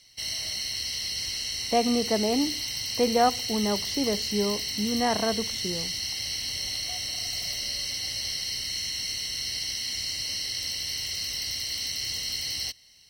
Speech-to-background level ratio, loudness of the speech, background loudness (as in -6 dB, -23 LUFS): 1.5 dB, -27.5 LUFS, -29.0 LUFS